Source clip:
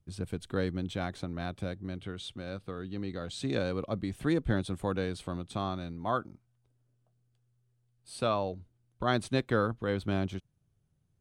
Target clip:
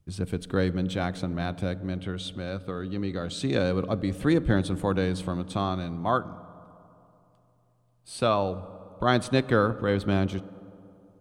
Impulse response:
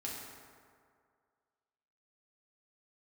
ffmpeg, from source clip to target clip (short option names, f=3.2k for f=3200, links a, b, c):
-filter_complex "[0:a]asplit=2[a][b];[1:a]atrim=start_sample=2205,asetrate=29547,aresample=44100,highshelf=f=3.9k:g=-11[c];[b][c]afir=irnorm=-1:irlink=0,volume=-16.5dB[d];[a][d]amix=inputs=2:normalize=0,volume=5dB"